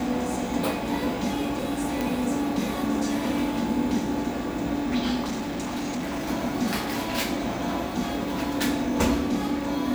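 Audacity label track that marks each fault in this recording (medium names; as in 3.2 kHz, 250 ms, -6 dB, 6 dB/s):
2.010000	2.010000	pop
5.240000	6.290000	clipped -26 dBFS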